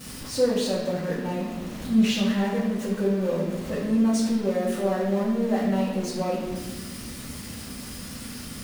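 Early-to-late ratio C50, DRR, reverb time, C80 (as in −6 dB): 2.0 dB, −7.5 dB, 1.2 s, 4.5 dB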